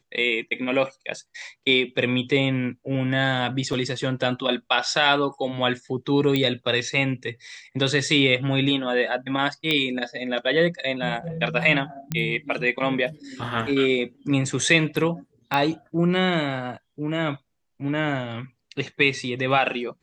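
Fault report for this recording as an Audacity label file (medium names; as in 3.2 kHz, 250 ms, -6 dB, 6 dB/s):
3.730000	3.730000	dropout 2.9 ms
6.360000	6.360000	pop -10 dBFS
9.710000	9.710000	pop -10 dBFS
12.120000	12.120000	pop -12 dBFS
15.540000	15.540000	pop -11 dBFS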